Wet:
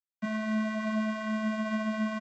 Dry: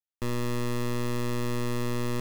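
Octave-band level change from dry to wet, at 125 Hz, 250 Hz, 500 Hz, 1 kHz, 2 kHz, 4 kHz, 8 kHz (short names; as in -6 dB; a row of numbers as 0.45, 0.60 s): under -10 dB, +3.0 dB, -3.5 dB, 0.0 dB, +4.0 dB, -5.0 dB, under -10 dB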